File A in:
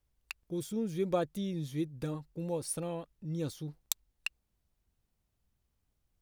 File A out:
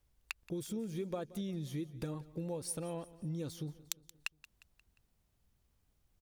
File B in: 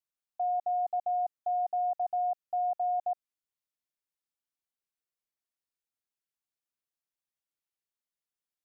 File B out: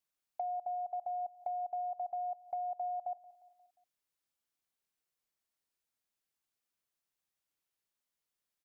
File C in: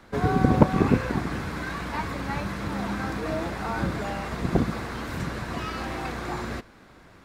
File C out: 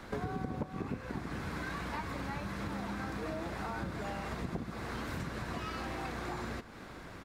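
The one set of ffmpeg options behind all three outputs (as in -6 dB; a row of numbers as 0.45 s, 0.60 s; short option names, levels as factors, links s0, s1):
-af "acompressor=threshold=0.01:ratio=6,aecho=1:1:177|354|531|708:0.112|0.0595|0.0315|0.0167,volume=1.5"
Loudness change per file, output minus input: -4.5 LU, -7.5 LU, -12.0 LU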